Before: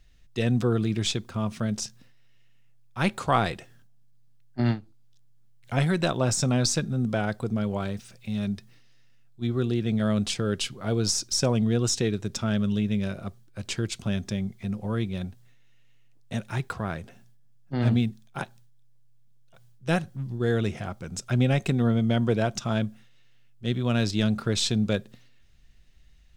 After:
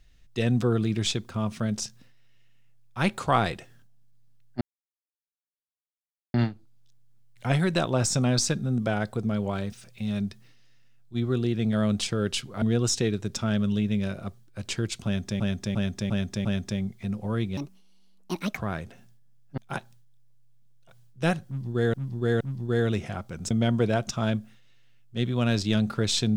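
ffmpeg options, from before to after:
-filter_complex "[0:a]asplit=13[a][b][c][d][e][f][g][h][i][j][k][l][m];[a]atrim=end=4.61,asetpts=PTS-STARTPTS,afade=t=out:st=4.606:d=0.004:c=hsin,apad=pad_dur=1.73[n];[b]atrim=start=4.61:end=10.892,asetpts=PTS-STARTPTS,afade=t=in:d=0.004:c=hsin[o];[c]atrim=start=11.618:end=14.402[p];[d]atrim=start=14.048:end=14.402[q];[e]atrim=start=14.048:end=14.402[r];[f]atrim=start=14.048:end=14.402[s];[g]atrim=start=14.048:end=15.174[t];[h]atrim=start=15.17:end=16.75,asetpts=PTS-STARTPTS,asetrate=69237,aresample=44100[u];[i]atrim=start=16.746:end=17.752[v];[j]atrim=start=18.228:end=20.592[w];[k]atrim=start=20.118:end=20.592[x];[l]atrim=start=20.118:end=21.222[y];[m]atrim=start=21.988[z];[n][o]concat=n=2:v=0:a=1[aa];[aa][p]acrossfade=d=0.004:c1=hsin:c2=hsin[ab];[ab][q]acrossfade=d=0.004:c1=hsin:c2=hsin[ac];[ac][r]acrossfade=d=0.004:c1=hsin:c2=hsin[ad];[ad][s]acrossfade=d=0.004:c1=hsin:c2=hsin[ae];[ae][t]acrossfade=d=0.004:c1=hsin:c2=hsin[af];[af][u]acrossfade=d=0.004:c1=hsin:c2=hsin[ag];[ag][v]acrossfade=d=0.004:c1=hsin:c2=hsin[ah];[ah][w]acrossfade=d=0.004:c1=hsin:c2=hsin[ai];[ai][x]acrossfade=d=0.004:c1=hsin:c2=hsin[aj];[aj][y]acrossfade=d=0.004:c1=hsin:c2=hsin[ak];[ak][z]acrossfade=d=0.004:c1=hsin:c2=hsin"

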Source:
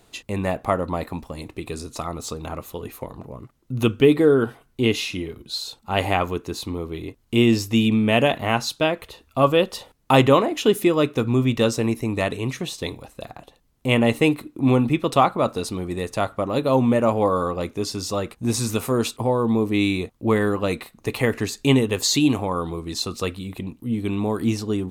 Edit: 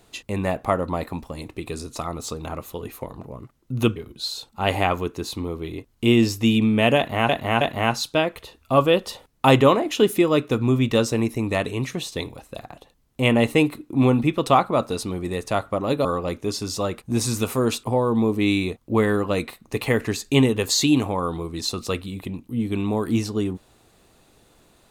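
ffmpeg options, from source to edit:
-filter_complex "[0:a]asplit=5[a][b][c][d][e];[a]atrim=end=3.962[f];[b]atrim=start=5.258:end=8.592[g];[c]atrim=start=8.268:end=8.592[h];[d]atrim=start=8.268:end=16.712[i];[e]atrim=start=17.378[j];[f][g]acrossfade=d=0.004:c1=hsin:c2=hsin[k];[k][h]acrossfade=d=0.004:c1=hsin:c2=hsin[l];[l][i]acrossfade=d=0.004:c1=hsin:c2=hsin[m];[m][j]acrossfade=d=0.004:c1=hsin:c2=hsin"

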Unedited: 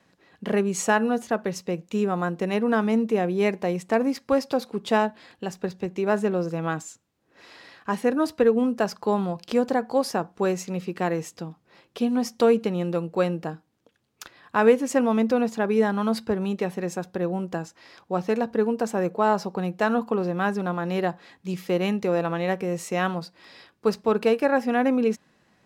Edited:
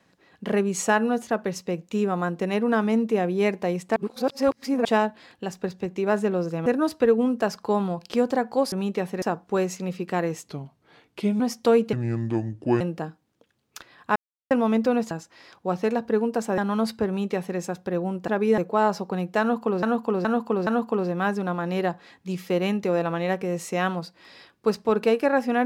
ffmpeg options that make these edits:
-filter_complex "[0:a]asplit=19[a][b][c][d][e][f][g][h][i][j][k][l][m][n][o][p][q][r][s];[a]atrim=end=3.962[t];[b]atrim=start=3.958:end=4.852,asetpts=PTS-STARTPTS,areverse[u];[c]atrim=start=4.848:end=6.662[v];[d]atrim=start=8.038:end=10.102[w];[e]atrim=start=16.358:end=16.862[x];[f]atrim=start=10.098:end=11.364[y];[g]atrim=start=11.36:end=12.15,asetpts=PTS-STARTPTS,asetrate=37926,aresample=44100,atrim=end_sample=40510,asetpts=PTS-STARTPTS[z];[h]atrim=start=12.146:end=12.684[aa];[i]atrim=start=12.68:end=13.26,asetpts=PTS-STARTPTS,asetrate=29106,aresample=44100[ab];[j]atrim=start=13.256:end=14.61,asetpts=PTS-STARTPTS,afade=t=out:st=1.35:d=0.004:c=hsin[ac];[k]atrim=start=14.61:end=14.96,asetpts=PTS-STARTPTS,volume=0[ad];[l]atrim=start=14.96:end=15.562,asetpts=PTS-STARTPTS,afade=t=in:d=0.004:c=hsin[ae];[m]atrim=start=17.558:end=19.032[af];[n]atrim=start=15.858:end=17.562[ag];[o]atrim=start=15.558:end=15.862[ah];[p]atrim=start=19.028:end=20.282[ai];[q]atrim=start=19.858:end=20.282[aj];[r]atrim=start=19.858:end=20.282[ak];[s]atrim=start=19.858[al];[t][u]acrossfade=d=0.004:c1=hsin:c2=hsin[am];[am][v]acrossfade=d=0.004:c1=hsin:c2=hsin[an];[an][w]acrossfade=d=0.004:c1=hsin:c2=hsin[ao];[ao][x]acrossfade=d=0.004:c1=hsin:c2=hsin[ap];[ap][y]acrossfade=d=0.004:c1=hsin:c2=hsin[aq];[aq][z]acrossfade=d=0.004:c1=hsin:c2=hsin[ar];[ar][aa]acrossfade=d=0.004:c1=hsin:c2=hsin[as];[as][ab]acrossfade=d=0.004:c1=hsin:c2=hsin[at];[ac][ad][ae]concat=n=3:v=0:a=1[au];[at][au]acrossfade=d=0.004:c1=hsin:c2=hsin[av];[av][af]acrossfade=d=0.004:c1=hsin:c2=hsin[aw];[aw][ag]acrossfade=d=0.004:c1=hsin:c2=hsin[ax];[ax][ah]acrossfade=d=0.004:c1=hsin:c2=hsin[ay];[ay][ai]acrossfade=d=0.004:c1=hsin:c2=hsin[az];[az][aj]acrossfade=d=0.004:c1=hsin:c2=hsin[ba];[ba][ak]acrossfade=d=0.004:c1=hsin:c2=hsin[bb];[bb][al]acrossfade=d=0.004:c1=hsin:c2=hsin"

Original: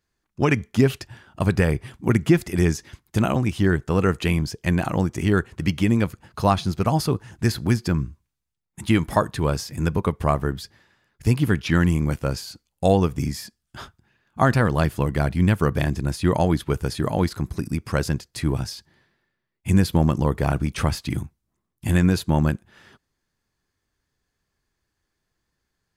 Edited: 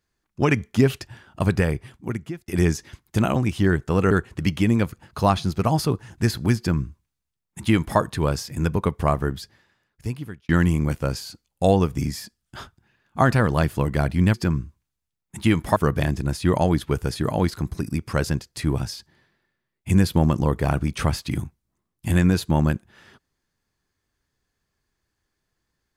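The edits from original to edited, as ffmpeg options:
-filter_complex "[0:a]asplit=6[a][b][c][d][e][f];[a]atrim=end=2.48,asetpts=PTS-STARTPTS,afade=t=out:st=1.47:d=1.01[g];[b]atrim=start=2.48:end=4.112,asetpts=PTS-STARTPTS,afade=t=in:d=0.004:c=hsin[h];[c]atrim=start=5.318:end=11.7,asetpts=PTS-STARTPTS,afade=t=out:st=5.212:d=1.17[i];[d]atrim=start=11.7:end=15.552,asetpts=PTS-STARTPTS,afade=t=in:d=0.004:c=hsin[j];[e]atrim=start=7.778:end=9.202[k];[f]atrim=start=15.548[l];[g][h]concat=n=2:v=0:a=1[m];[i][j]concat=n=2:v=0:a=1[n];[m][n]acrossfade=d=0.004:c1=hsin:c2=hsin[o];[o][k]acrossfade=d=0.004:c1=hsin:c2=hsin[p];[p][l]acrossfade=d=0.004:c1=hsin:c2=hsin"

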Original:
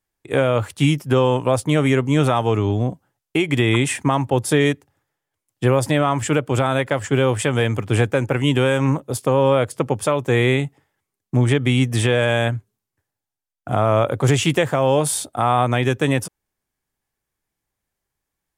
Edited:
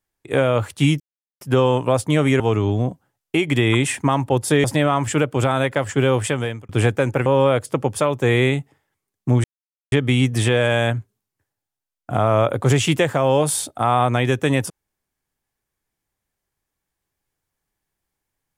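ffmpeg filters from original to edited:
-filter_complex "[0:a]asplit=7[a][b][c][d][e][f][g];[a]atrim=end=1,asetpts=PTS-STARTPTS,afade=t=out:st=0.996:d=0.004:c=hsin,apad=pad_dur=0.41[h];[b]atrim=start=1:end=1.992,asetpts=PTS-STARTPTS,afade=t=in:d=0.004:c=hsin[i];[c]atrim=start=2.408:end=4.652[j];[d]atrim=start=5.788:end=7.84,asetpts=PTS-STARTPTS,afade=t=out:st=1.602:d=0.45[k];[e]atrim=start=7.84:end=8.412,asetpts=PTS-STARTPTS,afade=t=in:d=0.004:c=hsin[l];[f]atrim=start=9.318:end=11.5,asetpts=PTS-STARTPTS,afade=t=out:st=2.178:d=0.004:c=hsin,apad=pad_dur=0.48[m];[g]atrim=start=11.5,asetpts=PTS-STARTPTS,afade=t=in:d=0.004:c=hsin[n];[h][i]concat=n=2:v=0:a=1[o];[o][j]acrossfade=d=0.004:c1=hsin:c2=hsin[p];[k][l]concat=n=2:v=0:a=1[q];[p][q]acrossfade=d=0.004:c1=hsin:c2=hsin[r];[m][n]concat=n=2:v=0:a=1[s];[r][s]acrossfade=d=0.004:c1=hsin:c2=hsin"

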